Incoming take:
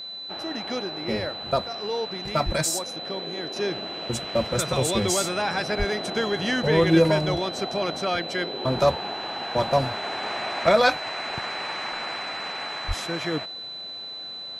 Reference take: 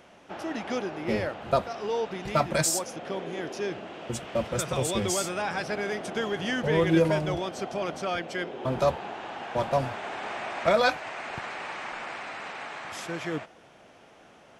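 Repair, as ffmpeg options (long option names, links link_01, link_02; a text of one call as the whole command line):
ffmpeg -i in.wav -filter_complex "[0:a]bandreject=frequency=4000:width=30,asplit=3[link_01][link_02][link_03];[link_01]afade=type=out:start_time=2.45:duration=0.02[link_04];[link_02]highpass=frequency=140:width=0.5412,highpass=frequency=140:width=1.3066,afade=type=in:start_time=2.45:duration=0.02,afade=type=out:start_time=2.57:duration=0.02[link_05];[link_03]afade=type=in:start_time=2.57:duration=0.02[link_06];[link_04][link_05][link_06]amix=inputs=3:normalize=0,asplit=3[link_07][link_08][link_09];[link_07]afade=type=out:start_time=5.78:duration=0.02[link_10];[link_08]highpass=frequency=140:width=0.5412,highpass=frequency=140:width=1.3066,afade=type=in:start_time=5.78:duration=0.02,afade=type=out:start_time=5.9:duration=0.02[link_11];[link_09]afade=type=in:start_time=5.9:duration=0.02[link_12];[link_10][link_11][link_12]amix=inputs=3:normalize=0,asplit=3[link_13][link_14][link_15];[link_13]afade=type=out:start_time=12.87:duration=0.02[link_16];[link_14]highpass=frequency=140:width=0.5412,highpass=frequency=140:width=1.3066,afade=type=in:start_time=12.87:duration=0.02,afade=type=out:start_time=12.99:duration=0.02[link_17];[link_15]afade=type=in:start_time=12.99:duration=0.02[link_18];[link_16][link_17][link_18]amix=inputs=3:normalize=0,asetnsamples=nb_out_samples=441:pad=0,asendcmd='3.56 volume volume -4dB',volume=0dB" out.wav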